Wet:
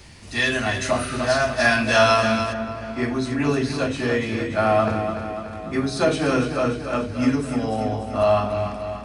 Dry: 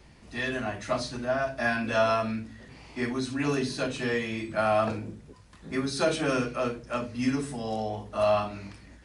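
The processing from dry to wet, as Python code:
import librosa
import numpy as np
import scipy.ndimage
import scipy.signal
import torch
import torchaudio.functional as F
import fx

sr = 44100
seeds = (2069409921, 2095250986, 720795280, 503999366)

y = fx.peak_eq(x, sr, hz=94.0, db=11.5, octaves=0.25)
y = fx.echo_feedback(y, sr, ms=292, feedback_pct=58, wet_db=-8)
y = fx.spec_repair(y, sr, seeds[0], start_s=0.94, length_s=0.22, low_hz=1200.0, high_hz=8700.0, source='after')
y = fx.high_shelf(y, sr, hz=2200.0, db=fx.steps((0.0, 10.0), (2.52, -4.5)))
y = y * 10.0 ** (6.0 / 20.0)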